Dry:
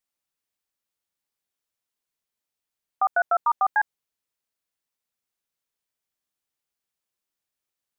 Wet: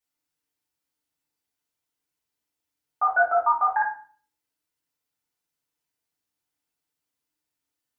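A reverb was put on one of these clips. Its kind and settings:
feedback delay network reverb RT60 0.43 s, low-frequency decay 1.55×, high-frequency decay 0.8×, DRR −7 dB
level −6 dB

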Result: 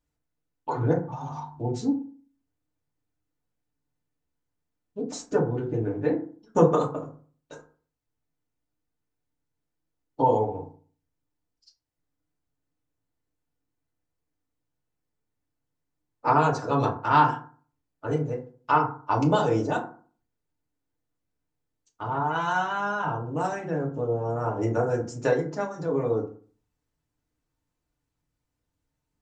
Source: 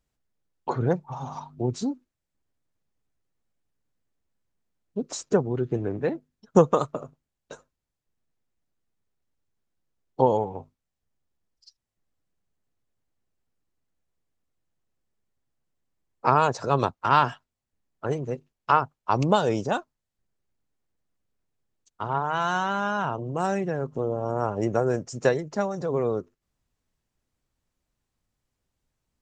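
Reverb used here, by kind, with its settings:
feedback delay network reverb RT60 0.43 s, low-frequency decay 1.2×, high-frequency decay 0.45×, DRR −2.5 dB
level −6 dB

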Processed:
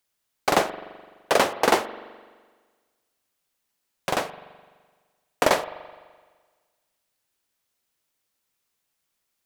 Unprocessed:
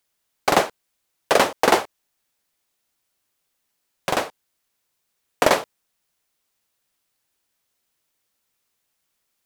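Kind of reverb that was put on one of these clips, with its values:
spring reverb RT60 1.5 s, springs 42 ms, chirp 45 ms, DRR 13.5 dB
level −3 dB

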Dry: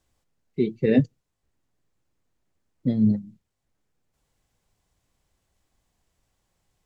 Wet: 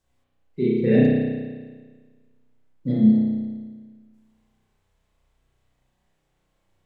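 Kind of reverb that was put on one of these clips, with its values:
spring reverb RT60 1.5 s, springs 32 ms, chirp 25 ms, DRR −7.5 dB
level −4.5 dB

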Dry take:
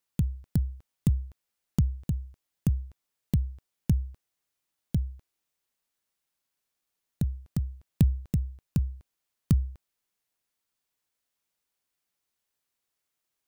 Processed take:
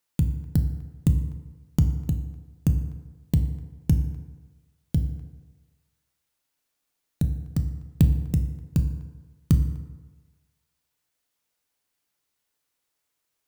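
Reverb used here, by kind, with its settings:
feedback delay network reverb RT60 1.3 s, low-frequency decay 0.85×, high-frequency decay 0.55×, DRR 6 dB
level +3.5 dB

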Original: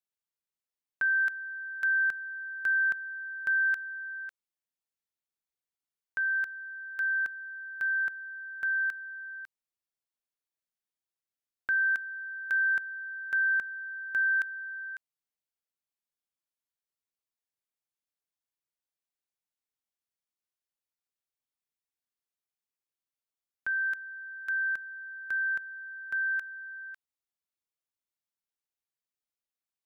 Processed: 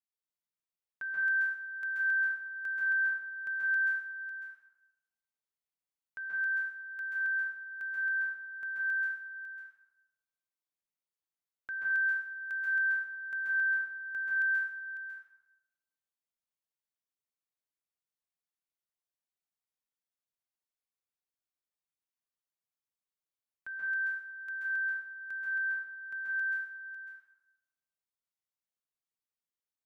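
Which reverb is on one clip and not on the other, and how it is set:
dense smooth reverb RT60 0.97 s, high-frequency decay 0.65×, pre-delay 120 ms, DRR −5 dB
level −11 dB

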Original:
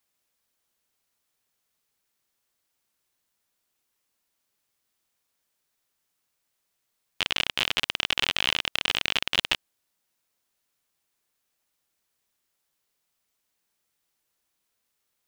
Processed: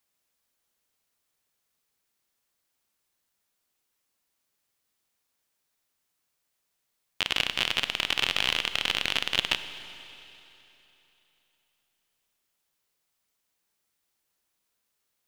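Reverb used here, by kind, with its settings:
four-comb reverb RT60 3.2 s, combs from 32 ms, DRR 10.5 dB
level −1 dB

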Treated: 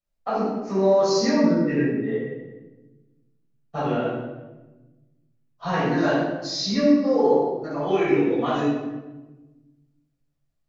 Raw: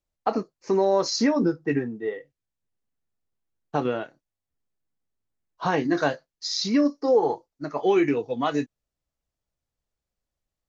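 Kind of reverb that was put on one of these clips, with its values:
rectangular room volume 650 cubic metres, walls mixed, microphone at 6.4 metres
level −11 dB

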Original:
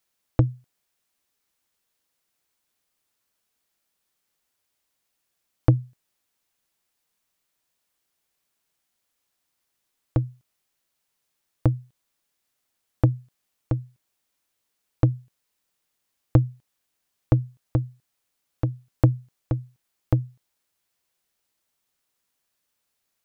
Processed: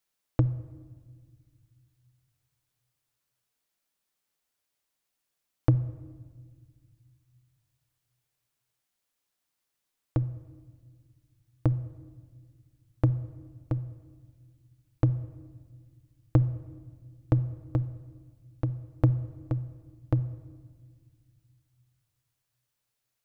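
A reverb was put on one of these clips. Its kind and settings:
rectangular room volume 1,900 cubic metres, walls mixed, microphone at 0.4 metres
level −5 dB

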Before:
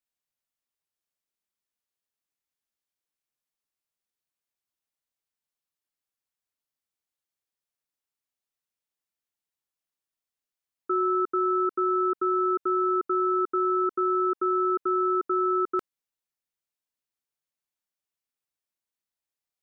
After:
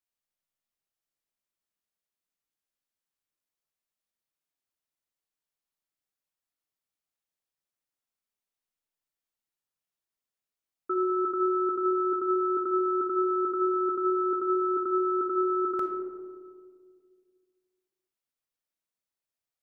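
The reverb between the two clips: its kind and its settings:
comb and all-pass reverb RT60 2 s, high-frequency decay 0.25×, pre-delay 0 ms, DRR 3 dB
level −3 dB

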